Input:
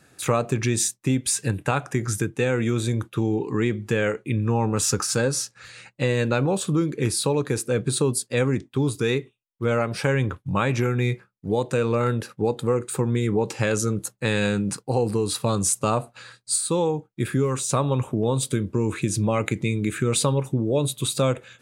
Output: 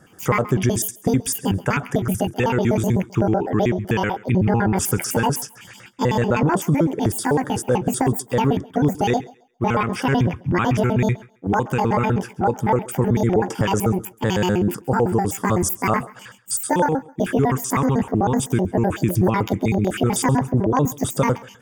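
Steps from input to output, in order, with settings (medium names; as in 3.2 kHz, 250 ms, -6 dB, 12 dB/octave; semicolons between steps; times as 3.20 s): pitch shift switched off and on +10 st, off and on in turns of 63 ms; treble shelf 4.4 kHz -8.5 dB; in parallel at +2 dB: peak limiter -16.5 dBFS, peak gain reduction 9.5 dB; on the sum: LFO notch square 7.8 Hz 580–2500 Hz; Butterworth band-stop 4.1 kHz, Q 3.2; on a send: thinning echo 135 ms, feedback 24%, high-pass 270 Hz, level -21 dB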